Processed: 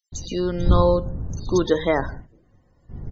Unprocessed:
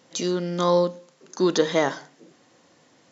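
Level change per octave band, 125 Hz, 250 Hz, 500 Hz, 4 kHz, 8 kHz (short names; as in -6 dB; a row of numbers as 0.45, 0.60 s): +9.0 dB, +1.5 dB, +1.0 dB, -3.5 dB, n/a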